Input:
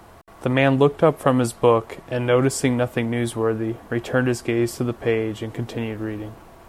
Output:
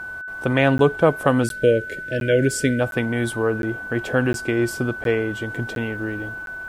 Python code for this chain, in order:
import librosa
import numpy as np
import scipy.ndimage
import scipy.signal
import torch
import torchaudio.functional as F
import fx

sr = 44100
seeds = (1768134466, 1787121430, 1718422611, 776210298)

y = fx.spec_erase(x, sr, start_s=1.43, length_s=1.37, low_hz=660.0, high_hz=1400.0)
y = y + 10.0 ** (-30.0 / 20.0) * np.sin(2.0 * np.pi * 1500.0 * np.arange(len(y)) / sr)
y = fx.buffer_crackle(y, sr, first_s=0.78, period_s=0.71, block=512, kind='zero')